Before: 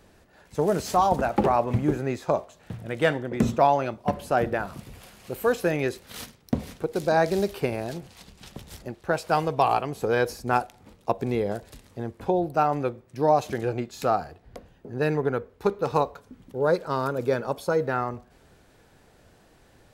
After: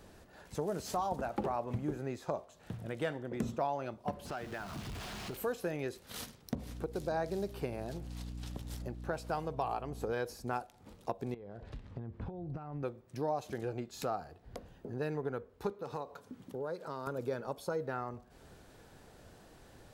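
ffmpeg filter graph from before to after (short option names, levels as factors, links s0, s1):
-filter_complex "[0:a]asettb=1/sr,asplit=3[s0][s1][s2];[s0]atrim=end=4.254[s3];[s1]atrim=start=4.25:end=5.37,asetpts=PTS-STARTPTS,afade=t=in:d=0.004:c=qsin,afade=t=out:st=1.116:d=0.004:c=qsin,aeval=exprs='val(0)+0.5*0.02*sgn(val(0))':c=same,acrossover=split=1500|6100[s4][s5][s6];[s4]acompressor=threshold=0.0224:ratio=4[s7];[s5]acompressor=threshold=0.0158:ratio=4[s8];[s6]acompressor=threshold=0.00158:ratio=4[s9];[s7][s8][s9]amix=inputs=3:normalize=0,bandreject=f=520:w=5.5[s10];[s2]atrim=start=5.366[s11];[s3][s10]acrossfade=d=0.004:c1=hsin:c2=qsin[s12];[s12][s11]acrossfade=d=0.004:c1=qsin:c2=hsin,asettb=1/sr,asplit=3[s13][s14][s15];[s13]atrim=end=6.554[s16];[s14]atrim=start=6.55:end=10.13,asetpts=PTS-STARTPTS,afade=t=in:d=0.004:c=qsin,afade=t=out:st=3.576:d=0.004:c=qsin,aeval=exprs='val(0)+0.0141*(sin(2*PI*60*n/s)+sin(2*PI*2*60*n/s)/2+sin(2*PI*3*60*n/s)/3+sin(2*PI*4*60*n/s)/4+sin(2*PI*5*60*n/s)/5)':c=same,adynamicequalizer=threshold=0.0141:dfrequency=1600:dqfactor=0.7:tfrequency=1600:tqfactor=0.7:attack=5:release=100:ratio=0.375:range=2:mode=cutabove:tftype=highshelf[s17];[s15]atrim=start=10.126[s18];[s16][s17]acrossfade=d=0.004:c1=hsin:c2=qsin[s19];[s19][s18]acrossfade=d=0.004:c1=qsin:c2=hsin,asettb=1/sr,asplit=3[s20][s21][s22];[s20]atrim=end=11.344[s23];[s21]atrim=start=11.34:end=12.83,asetpts=PTS-STARTPTS,afade=t=in:d=0.004:c=qsin,afade=t=out:st=1.486:d=0.004:c=qsin,lowpass=2700,acompressor=threshold=0.0158:ratio=10:attack=3.2:release=140:knee=1:detection=peak,asubboost=boost=9.5:cutoff=240[s24];[s22]atrim=start=12.826[s25];[s23][s24]acrossfade=d=0.004:c1=hsin:c2=qsin[s26];[s26][s25]acrossfade=d=0.004:c1=qsin:c2=hsin,asettb=1/sr,asplit=3[s27][s28][s29];[s27]atrim=end=15.714[s30];[s28]atrim=start=15.71:end=17.07,asetpts=PTS-STARTPTS,afade=t=in:d=0.004:c=qsin,afade=t=out:st=1.356:d=0.004:c=qsin,highpass=120,acompressor=threshold=0.0251:ratio=2:attack=3.2:release=140:knee=1:detection=peak[s31];[s29]atrim=start=17.066[s32];[s30][s31]acrossfade=d=0.004:c1=hsin:c2=qsin[s33];[s33][s32]acrossfade=d=0.004:c1=qsin:c2=hsin,equalizer=f=2200:t=o:w=0.77:g=-3,acompressor=threshold=0.00708:ratio=2"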